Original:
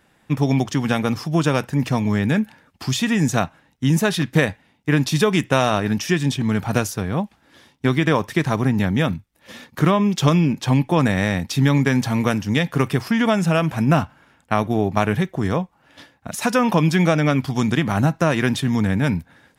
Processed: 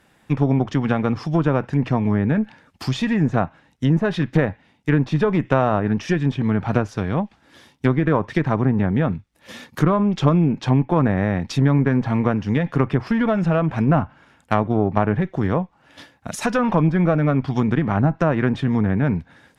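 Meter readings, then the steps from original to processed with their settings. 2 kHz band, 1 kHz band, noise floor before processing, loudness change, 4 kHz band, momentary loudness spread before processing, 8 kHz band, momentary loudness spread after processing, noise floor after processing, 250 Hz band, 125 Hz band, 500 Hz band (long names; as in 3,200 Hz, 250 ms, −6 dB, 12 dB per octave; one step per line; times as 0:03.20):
−4.0 dB, −1.0 dB, −60 dBFS, −0.5 dB, −8.5 dB, 7 LU, below −10 dB, 7 LU, −59 dBFS, 0.0 dB, +0.5 dB, 0.0 dB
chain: one-sided soft clipper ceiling −16.5 dBFS
dynamic equaliser 3,600 Hz, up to −3 dB, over −34 dBFS, Q 0.71
treble cut that deepens with the level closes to 1,500 Hz, closed at −15.5 dBFS
level +1.5 dB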